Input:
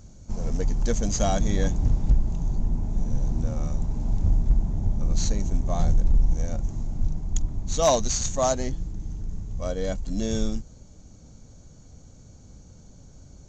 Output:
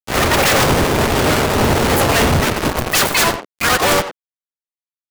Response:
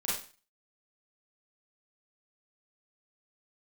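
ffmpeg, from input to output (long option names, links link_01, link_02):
-filter_complex "[0:a]lowpass=4800,afftdn=noise_reduction=32:noise_floor=-30,acrossover=split=3500[link_01][link_02];[link_02]acompressor=threshold=-49dB:ratio=4:attack=1:release=60[link_03];[link_01][link_03]amix=inputs=2:normalize=0,highpass=frequency=310:poles=1,acrossover=split=430|920[link_04][link_05][link_06];[link_05]acompressor=threshold=-41dB:ratio=12[link_07];[link_04][link_07][link_06]amix=inputs=3:normalize=0,asetrate=116424,aresample=44100,acrusher=bits=5:mix=0:aa=0.000001,asplit=4[link_08][link_09][link_10][link_11];[link_09]asetrate=29433,aresample=44100,atempo=1.49831,volume=-10dB[link_12];[link_10]asetrate=37084,aresample=44100,atempo=1.18921,volume=-11dB[link_13];[link_11]asetrate=66075,aresample=44100,atempo=0.66742,volume=-6dB[link_14];[link_08][link_12][link_13][link_14]amix=inputs=4:normalize=0,aeval=exprs='0.2*sin(PI/2*6.31*val(0)/0.2)':channel_layout=same,asplit=2[link_15][link_16];[link_16]adelay=90,highpass=300,lowpass=3400,asoftclip=type=hard:threshold=-22dB,volume=-6dB[link_17];[link_15][link_17]amix=inputs=2:normalize=0,volume=4dB"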